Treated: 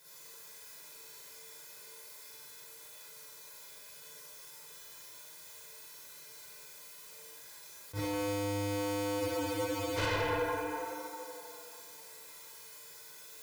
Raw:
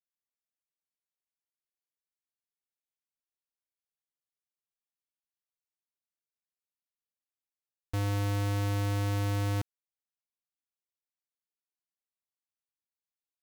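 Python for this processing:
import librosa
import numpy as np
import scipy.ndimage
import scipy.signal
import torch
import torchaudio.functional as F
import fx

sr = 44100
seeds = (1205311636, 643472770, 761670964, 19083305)

p1 = scipy.signal.sosfilt(scipy.signal.butter(2, 110.0, 'highpass', fs=sr, output='sos'), x)
p2 = fx.notch(p1, sr, hz=2900.0, q=8.3)
p3 = p2 + fx.echo_tape(p2, sr, ms=83, feedback_pct=86, wet_db=-20, lp_hz=4700.0, drive_db=24.0, wow_cents=25, dry=0)
p4 = fx.over_compress(p3, sr, threshold_db=-51.0, ratio=-1.0)
p5 = fx.comb_fb(p4, sr, f0_hz=150.0, decay_s=0.88, harmonics='all', damping=0.0, mix_pct=80)
p6 = fx.rev_schroeder(p5, sr, rt60_s=1.2, comb_ms=38, drr_db=-8.0)
p7 = fx.fold_sine(p6, sr, drive_db=15, ceiling_db=-42.0)
p8 = p6 + (p7 * librosa.db_to_amplitude(-5.5))
p9 = p8 + 0.78 * np.pad(p8, (int(2.0 * sr / 1000.0), 0))[:len(p8)]
p10 = fx.spec_freeze(p9, sr, seeds[0], at_s=9.21, hold_s=0.77)
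p11 = fx.attack_slew(p10, sr, db_per_s=360.0)
y = p11 * librosa.db_to_amplitude(14.5)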